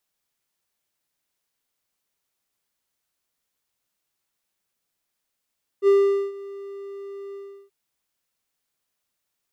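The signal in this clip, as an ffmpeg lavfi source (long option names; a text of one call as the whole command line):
ffmpeg -f lavfi -i "aevalsrc='0.316*(1-4*abs(mod(397*t+0.25,1)-0.5))':duration=1.88:sample_rate=44100,afade=type=in:duration=0.056,afade=type=out:start_time=0.056:duration=0.442:silence=0.0841,afade=type=out:start_time=1.52:duration=0.36" out.wav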